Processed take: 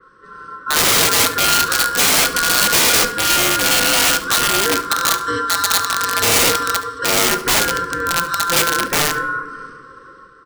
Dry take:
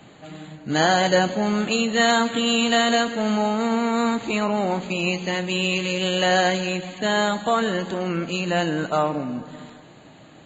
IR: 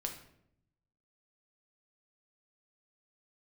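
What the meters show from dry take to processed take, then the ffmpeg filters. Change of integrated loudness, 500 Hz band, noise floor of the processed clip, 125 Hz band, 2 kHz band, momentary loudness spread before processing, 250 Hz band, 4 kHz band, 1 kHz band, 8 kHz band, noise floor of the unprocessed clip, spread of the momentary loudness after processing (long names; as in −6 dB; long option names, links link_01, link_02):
+7.5 dB, −1.0 dB, −43 dBFS, −1.5 dB, +7.5 dB, 8 LU, −5.0 dB, +9.0 dB, +5.0 dB, can't be measured, −47 dBFS, 7 LU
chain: -filter_complex "[0:a]aeval=exprs='val(0)*sin(2*PI*1200*n/s)':channel_layout=same,asuperstop=centerf=760:order=20:qfactor=1.4,highshelf=frequency=1600:width_type=q:width=3:gain=-12.5,aeval=exprs='(mod(15.8*val(0)+1,2)-1)/15.8':channel_layout=same,aecho=1:1:71:0.15,dynaudnorm=framelen=100:gausssize=9:maxgain=8.5dB,bandreject=frequency=419.3:width_type=h:width=4,bandreject=frequency=838.6:width_type=h:width=4,bandreject=frequency=1257.9:width_type=h:width=4,bandreject=frequency=1677.2:width_type=h:width=4,bandreject=frequency=2096.5:width_type=h:width=4,bandreject=frequency=2515.8:width_type=h:width=4,bandreject=frequency=2935.1:width_type=h:width=4,bandreject=frequency=3354.4:width_type=h:width=4,bandreject=frequency=3773.7:width_type=h:width=4,bandreject=frequency=4193:width_type=h:width=4,bandreject=frequency=4612.3:width_type=h:width=4,bandreject=frequency=5031.6:width_type=h:width=4,bandreject=frequency=5450.9:width_type=h:width=4,bandreject=frequency=5870.2:width_type=h:width=4,bandreject=frequency=6289.5:width_type=h:width=4,bandreject=frequency=6708.8:width_type=h:width=4,bandreject=frequency=7128.1:width_type=h:width=4,bandreject=frequency=7547.4:width_type=h:width=4,bandreject=frequency=7966.7:width_type=h:width=4,bandreject=frequency=8386:width_type=h:width=4,bandreject=frequency=8805.3:width_type=h:width=4,bandreject=frequency=9224.6:width_type=h:width=4,bandreject=frequency=9643.9:width_type=h:width=4,bandreject=frequency=10063.2:width_type=h:width=4,bandreject=frequency=10482.5:width_type=h:width=4,bandreject=frequency=10901.8:width_type=h:width=4,bandreject=frequency=11321.1:width_type=h:width=4,bandreject=frequency=11740.4:width_type=h:width=4,asplit=2[link_01][link_02];[link_02]highpass=81[link_03];[1:a]atrim=start_sample=2205[link_04];[link_03][link_04]afir=irnorm=-1:irlink=0,volume=-6dB[link_05];[link_01][link_05]amix=inputs=2:normalize=0,adynamicequalizer=threshold=0.0282:dfrequency=4000:dqfactor=0.7:tfrequency=4000:tqfactor=0.7:attack=5:release=100:ratio=0.375:range=3:mode=boostabove:tftype=highshelf,volume=1dB"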